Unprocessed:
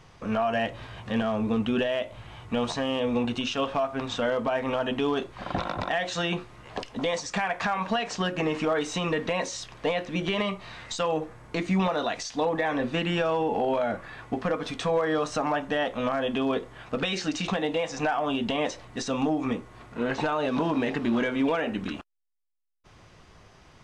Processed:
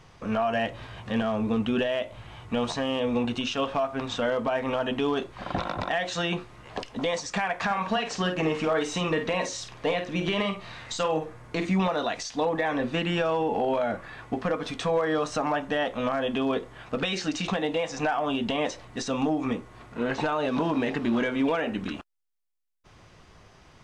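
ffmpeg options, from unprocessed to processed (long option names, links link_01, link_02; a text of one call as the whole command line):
ffmpeg -i in.wav -filter_complex "[0:a]asettb=1/sr,asplit=3[link_01][link_02][link_03];[link_01]atrim=end=7.654[link_04];[link_02]atrim=start=7.65:end=11.7,asetpts=PTS-STARTPTS,afade=type=in:duration=0.004:curve=qsin,afade=type=out:start_time=4.046:duration=0.004:curve=qsin,asplit=2[link_05][link_06];[link_06]adelay=50,volume=-8.5dB[link_07];[link_05][link_07]amix=inputs=2:normalize=0,atrim=end_sample=178605[link_08];[link_03]atrim=start=11.696[link_09];[link_04][link_08]acrossfade=duration=0.004:curve1=hsin:curve2=qsin[link_10];[link_10][link_09]acrossfade=duration=0.004:curve1=qsin:curve2=hsin" out.wav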